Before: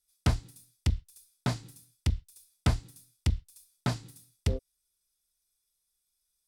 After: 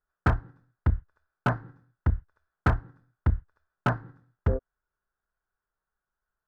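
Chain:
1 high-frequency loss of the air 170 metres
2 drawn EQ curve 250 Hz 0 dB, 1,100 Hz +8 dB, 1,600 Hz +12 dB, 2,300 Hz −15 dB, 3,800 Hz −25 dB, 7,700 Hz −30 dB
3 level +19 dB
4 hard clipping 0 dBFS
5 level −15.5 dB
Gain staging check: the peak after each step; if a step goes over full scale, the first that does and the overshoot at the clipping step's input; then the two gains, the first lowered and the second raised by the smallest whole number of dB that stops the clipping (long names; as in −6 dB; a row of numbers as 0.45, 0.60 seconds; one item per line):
−14.0, −12.5, +6.5, 0.0, −15.5 dBFS
step 3, 6.5 dB
step 3 +12 dB, step 5 −8.5 dB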